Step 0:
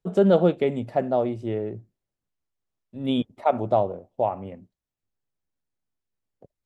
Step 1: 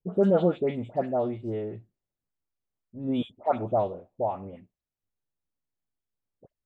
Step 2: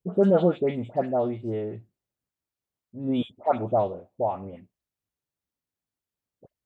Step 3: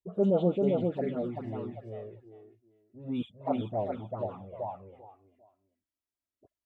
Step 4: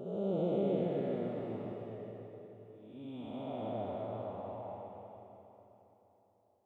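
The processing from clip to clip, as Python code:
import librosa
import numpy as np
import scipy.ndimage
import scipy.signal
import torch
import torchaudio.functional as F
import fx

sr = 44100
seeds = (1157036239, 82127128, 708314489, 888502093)

y1 = fx.high_shelf(x, sr, hz=2700.0, db=-8.5)
y1 = fx.dispersion(y1, sr, late='highs', ms=91.0, hz=1700.0)
y1 = F.gain(torch.from_numpy(y1), -3.5).numpy()
y2 = scipy.signal.sosfilt(scipy.signal.butter(2, 45.0, 'highpass', fs=sr, output='sos'), y1)
y2 = F.gain(torch.from_numpy(y2), 2.0).numpy()
y3 = fx.echo_feedback(y2, sr, ms=395, feedback_pct=22, wet_db=-3.0)
y3 = fx.env_flanger(y3, sr, rest_ms=3.1, full_db=-16.5)
y3 = F.gain(torch.from_numpy(y3), -5.0).numpy()
y4 = fx.spec_blur(y3, sr, span_ms=437.0)
y4 = fx.low_shelf(y4, sr, hz=260.0, db=-8.0)
y4 = fx.rev_freeverb(y4, sr, rt60_s=3.8, hf_ratio=0.8, predelay_ms=25, drr_db=4.5)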